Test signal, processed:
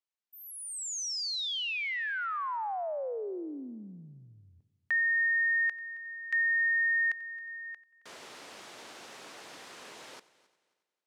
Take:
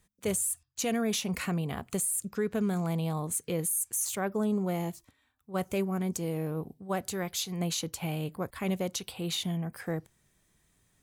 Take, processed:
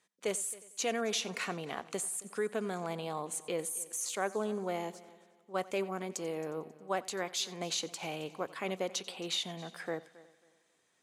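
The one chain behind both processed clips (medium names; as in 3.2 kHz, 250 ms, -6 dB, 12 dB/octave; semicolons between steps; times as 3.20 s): band-pass 380–7100 Hz; on a send: multi-head delay 90 ms, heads first and third, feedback 43%, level -20.5 dB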